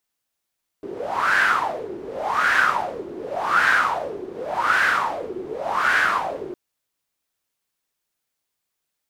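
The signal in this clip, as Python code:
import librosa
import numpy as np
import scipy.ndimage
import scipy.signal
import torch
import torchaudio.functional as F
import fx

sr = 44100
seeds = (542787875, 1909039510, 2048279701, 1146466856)

y = fx.wind(sr, seeds[0], length_s=5.71, low_hz=360.0, high_hz=1600.0, q=7.2, gusts=5, swing_db=16.0)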